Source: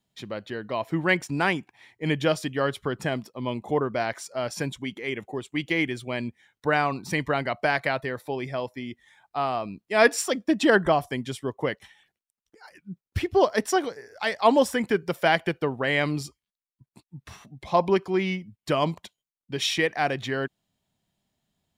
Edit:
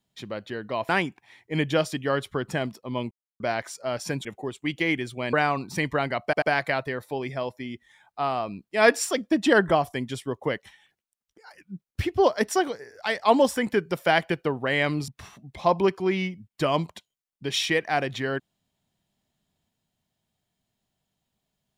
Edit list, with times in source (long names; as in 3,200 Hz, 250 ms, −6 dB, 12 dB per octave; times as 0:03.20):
0:00.89–0:01.40: remove
0:03.62–0:03.91: silence
0:04.76–0:05.15: remove
0:06.23–0:06.68: remove
0:07.59: stutter 0.09 s, 3 plays
0:16.25–0:17.16: remove